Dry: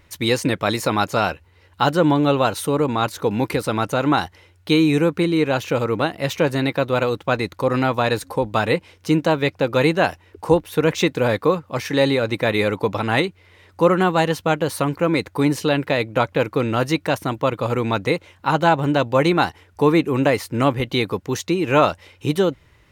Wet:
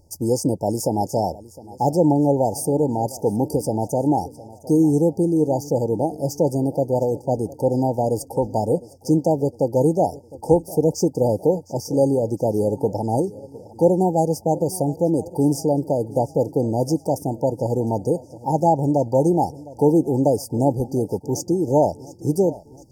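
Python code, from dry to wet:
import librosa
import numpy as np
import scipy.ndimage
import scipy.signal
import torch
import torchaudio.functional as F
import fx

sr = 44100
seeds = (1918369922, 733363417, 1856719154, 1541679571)

y = fx.brickwall_bandstop(x, sr, low_hz=930.0, high_hz=4600.0)
y = fx.peak_eq(y, sr, hz=9400.0, db=2.5, octaves=1.1)
y = fx.echo_feedback(y, sr, ms=709, feedback_pct=53, wet_db=-19.5)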